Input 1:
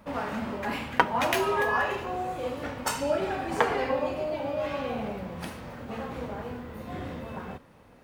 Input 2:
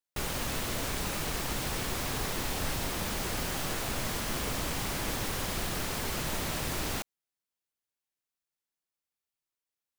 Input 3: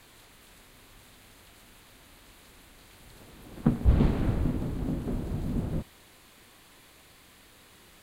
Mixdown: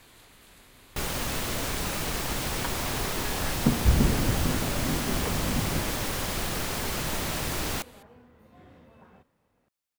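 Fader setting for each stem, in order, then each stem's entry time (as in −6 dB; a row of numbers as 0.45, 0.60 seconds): −16.5, +3.0, +0.5 decibels; 1.65, 0.80, 0.00 seconds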